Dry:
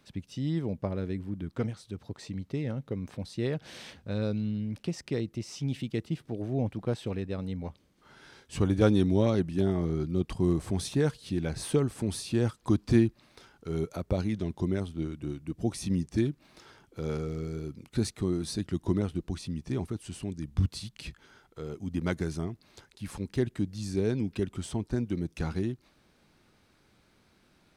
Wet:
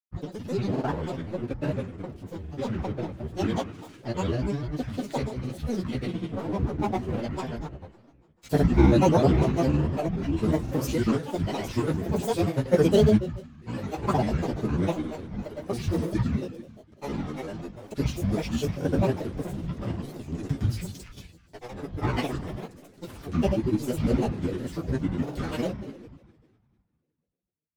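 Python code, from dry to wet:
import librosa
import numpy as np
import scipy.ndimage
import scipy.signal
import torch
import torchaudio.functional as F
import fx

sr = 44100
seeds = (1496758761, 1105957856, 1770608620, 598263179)

y = np.sign(x) * np.maximum(np.abs(x) - 10.0 ** (-41.5 / 20.0), 0.0)
y = fx.rev_double_slope(y, sr, seeds[0], early_s=0.56, late_s=2.0, knee_db=-17, drr_db=-9.5)
y = fx.granulator(y, sr, seeds[1], grain_ms=100.0, per_s=20.0, spray_ms=100.0, spread_st=12)
y = y * librosa.db_to_amplitude(-3.0)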